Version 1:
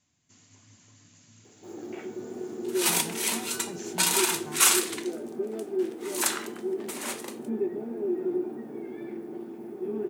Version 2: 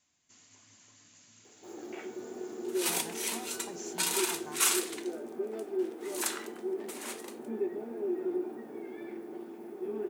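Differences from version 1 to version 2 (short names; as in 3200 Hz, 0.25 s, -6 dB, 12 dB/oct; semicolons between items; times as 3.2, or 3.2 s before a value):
second sound -6.5 dB; master: add bell 120 Hz -12.5 dB 2.3 oct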